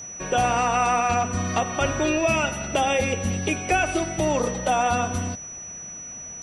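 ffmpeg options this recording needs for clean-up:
-af "bandreject=f=5.9k:w=30"

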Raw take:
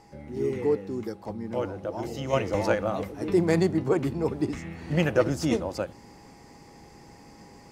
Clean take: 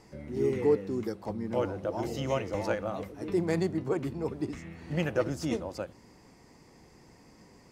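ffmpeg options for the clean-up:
-af "bandreject=f=820:w=30,asetnsamples=n=441:p=0,asendcmd='2.33 volume volume -6dB',volume=0dB"

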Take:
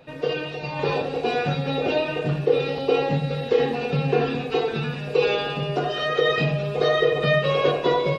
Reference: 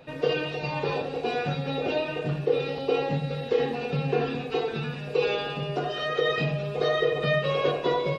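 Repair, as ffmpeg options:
-af "asetnsamples=n=441:p=0,asendcmd='0.79 volume volume -4.5dB',volume=0dB"

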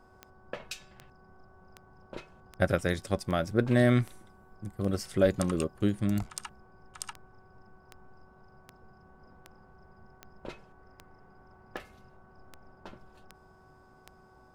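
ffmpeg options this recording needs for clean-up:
-af "adeclick=t=4,bandreject=f=374.9:t=h:w=4,bandreject=f=749.8:t=h:w=4,bandreject=f=1.1247k:t=h:w=4,bandreject=f=1.4996k:t=h:w=4"

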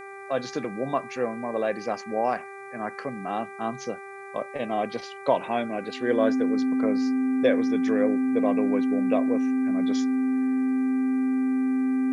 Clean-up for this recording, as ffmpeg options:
-af "bandreject=f=393.7:t=h:w=4,bandreject=f=787.4:t=h:w=4,bandreject=f=1.1811k:t=h:w=4,bandreject=f=1.5748k:t=h:w=4,bandreject=f=1.9685k:t=h:w=4,bandreject=f=2.3622k:t=h:w=4,bandreject=f=260:w=30,agate=range=-21dB:threshold=-33dB"

